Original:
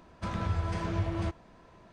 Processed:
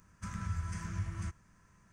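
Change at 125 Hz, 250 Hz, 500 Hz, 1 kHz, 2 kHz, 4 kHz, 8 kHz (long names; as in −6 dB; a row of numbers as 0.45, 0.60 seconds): −5.5, −9.0, −21.5, −10.5, −5.5, −10.0, +4.0 decibels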